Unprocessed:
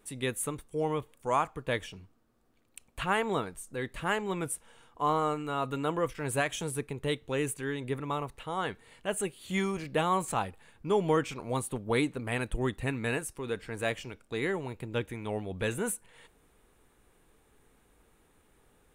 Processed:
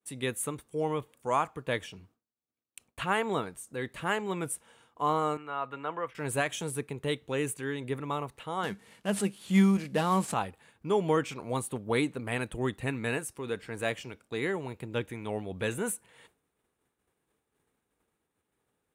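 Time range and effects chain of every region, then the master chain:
0:05.37–0:06.15: high-pass filter 59 Hz + three-way crossover with the lows and the highs turned down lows −12 dB, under 590 Hz, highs −22 dB, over 2,900 Hz
0:08.63–0:10.34: variable-slope delta modulation 64 kbit/s + parametric band 200 Hz +13.5 dB 0.21 octaves
whole clip: downward expander −54 dBFS; high-pass filter 86 Hz

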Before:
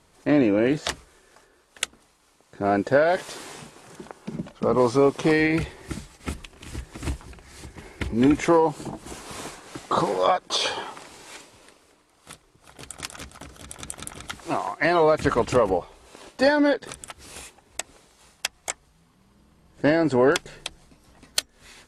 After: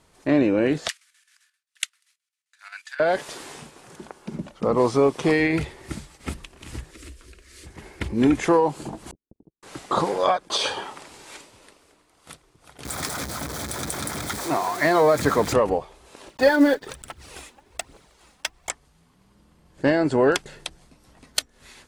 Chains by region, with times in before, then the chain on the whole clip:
0:00.88–0:03.00: inverse Chebyshev high-pass filter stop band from 500 Hz, stop band 60 dB + noise gate with hold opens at −52 dBFS, closes at −56 dBFS + square-wave tremolo 7.6 Hz, depth 65%, duty 70%
0:06.91–0:07.66: parametric band 230 Hz −5 dB 1.3 octaves + phaser with its sweep stopped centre 340 Hz, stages 4 + downward compressor 3 to 1, threshold −40 dBFS
0:09.11–0:09.63: phase distortion by the signal itself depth 0.8 ms + inverse Chebyshev low-pass filter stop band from 1,000 Hz, stop band 50 dB + noise gate −42 dBFS, range −48 dB
0:12.85–0:15.53: converter with a step at zero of −26 dBFS + high-pass filter 85 Hz + parametric band 2,800 Hz −13.5 dB 0.23 octaves
0:16.28–0:18.70: one scale factor per block 5 bits + high-shelf EQ 6,100 Hz −6.5 dB + phase shifter 1.2 Hz, delay 4.2 ms, feedback 46%
whole clip: no processing

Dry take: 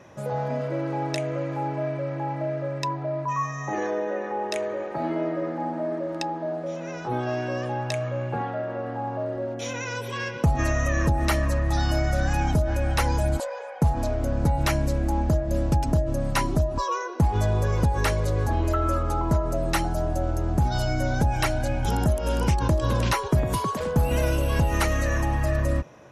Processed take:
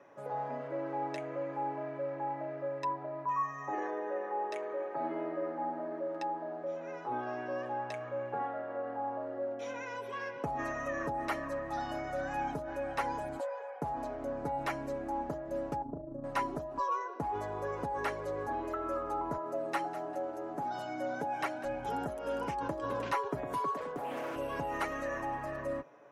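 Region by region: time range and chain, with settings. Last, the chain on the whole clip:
0:15.82–0:16.24: drawn EQ curve 340 Hz 0 dB, 1,400 Hz −14 dB, 2,000 Hz −28 dB + amplitude modulation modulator 27 Hz, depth 40% + double-tracking delay 37 ms −6.5 dB
0:19.37–0:21.65: high-pass filter 170 Hz + repeating echo 199 ms, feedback 35%, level −15.5 dB
0:23.96–0:24.36: high-pass filter 170 Hz + hard clipping −22.5 dBFS + highs frequency-modulated by the lows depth 0.55 ms
whole clip: three-way crossover with the lows and the highs turned down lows −20 dB, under 260 Hz, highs −13 dB, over 2,200 Hz; comb filter 7.1 ms, depth 46%; level −7.5 dB

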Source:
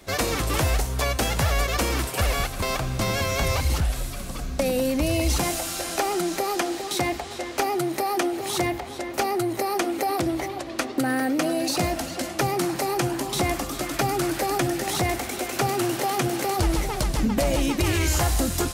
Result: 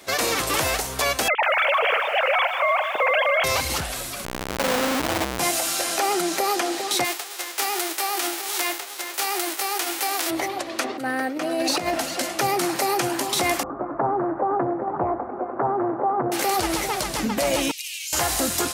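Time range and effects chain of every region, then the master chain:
0:01.28–0:03.44: three sine waves on the formant tracks + feedback echo at a low word length 151 ms, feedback 55%, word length 8 bits, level −10 dB
0:04.25–0:05.39: spectral tilt −3 dB per octave + comparator with hysteresis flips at −33 dBFS
0:07.04–0:10.29: spectral envelope flattened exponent 0.3 + Chebyshev high-pass filter 290 Hz, order 6 + flanger 1.5 Hz, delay 1.6 ms, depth 7.3 ms, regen −83%
0:10.84–0:12.00: high-shelf EQ 4,700 Hz −9.5 dB + compressor whose output falls as the input rises −26 dBFS, ratio −0.5
0:13.63–0:16.32: Butterworth low-pass 1,200 Hz + highs frequency-modulated by the lows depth 0.37 ms
0:17.71–0:18.13: Chebyshev high-pass filter 2,600 Hz, order 4 + downward compressor 2.5 to 1, threshold −38 dBFS
whole clip: high-pass filter 540 Hz 6 dB per octave; brickwall limiter −18 dBFS; level +6 dB

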